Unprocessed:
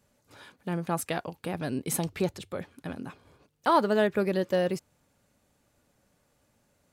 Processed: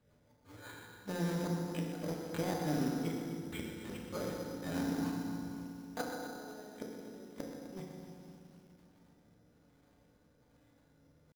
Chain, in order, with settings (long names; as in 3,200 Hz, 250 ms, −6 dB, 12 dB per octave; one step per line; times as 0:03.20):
dynamic equaliser 110 Hz, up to −6 dB, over −49 dBFS, Q 1.9
tempo change 0.61×
rotating-speaker cabinet horn 5.5 Hz, later 1.2 Hz, at 0:00.89
gate with flip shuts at −23 dBFS, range −33 dB
in parallel at −7 dB: wrap-around overflow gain 36.5 dB
on the sum: echo with a time of its own for lows and highs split 410 Hz, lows 293 ms, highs 129 ms, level −11.5 dB
feedback delay network reverb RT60 2.2 s, low-frequency decay 1.3×, high-frequency decay 0.45×, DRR −1.5 dB
bad sample-rate conversion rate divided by 8×, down filtered, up hold
feedback echo at a low word length 253 ms, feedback 55%, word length 9 bits, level −12.5 dB
level −3.5 dB